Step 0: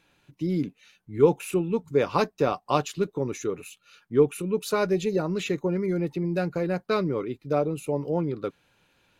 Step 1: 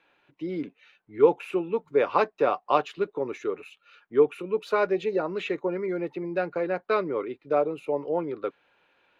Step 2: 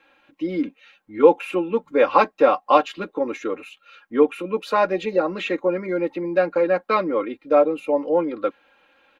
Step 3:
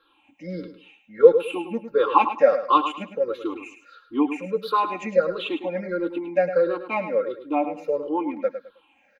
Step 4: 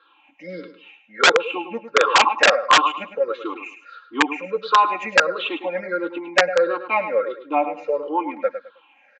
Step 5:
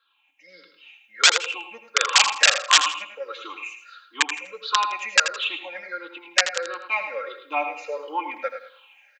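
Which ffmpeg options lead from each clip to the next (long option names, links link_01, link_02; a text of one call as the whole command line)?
ffmpeg -i in.wav -filter_complex "[0:a]acrossover=split=330 3300:gain=0.126 1 0.0708[link_01][link_02][link_03];[link_01][link_02][link_03]amix=inputs=3:normalize=0,volume=2.5dB" out.wav
ffmpeg -i in.wav -af "aecho=1:1:3.7:0.88,volume=4.5dB" out.wav
ffmpeg -i in.wav -filter_complex "[0:a]afftfilt=real='re*pow(10,22/40*sin(2*PI*(0.61*log(max(b,1)*sr/1024/100)/log(2)-(-1.5)*(pts-256)/sr)))':imag='im*pow(10,22/40*sin(2*PI*(0.61*log(max(b,1)*sr/1024/100)/log(2)-(-1.5)*(pts-256)/sr)))':win_size=1024:overlap=0.75,asplit=2[link_01][link_02];[link_02]aecho=0:1:105|210|315:0.316|0.0791|0.0198[link_03];[link_01][link_03]amix=inputs=2:normalize=0,volume=-8.5dB" out.wav
ffmpeg -i in.wav -af "aresample=16000,aeval=exprs='(mod(3.76*val(0)+1,2)-1)/3.76':channel_layout=same,aresample=44100,bandpass=frequency=1500:width_type=q:width=0.68:csg=0,volume=8dB" out.wav
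ffmpeg -i in.wav -af "aderivative,aecho=1:1:82|164|246:0.282|0.0761|0.0205,dynaudnorm=framelen=200:gausssize=7:maxgain=14dB" out.wav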